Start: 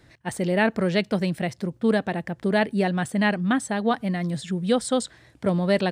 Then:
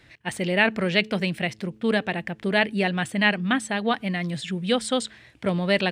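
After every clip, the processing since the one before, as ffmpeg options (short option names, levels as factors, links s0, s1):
-af "equalizer=f=2600:t=o:w=1.2:g=11,bandreject=f=108:t=h:w=4,bandreject=f=216:t=h:w=4,bandreject=f=324:t=h:w=4,bandreject=f=432:t=h:w=4,volume=0.794"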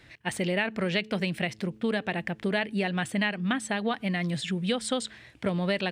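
-af "acompressor=threshold=0.0631:ratio=6"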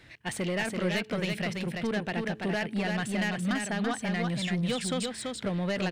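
-af "asoftclip=type=tanh:threshold=0.0596,aecho=1:1:335:0.631"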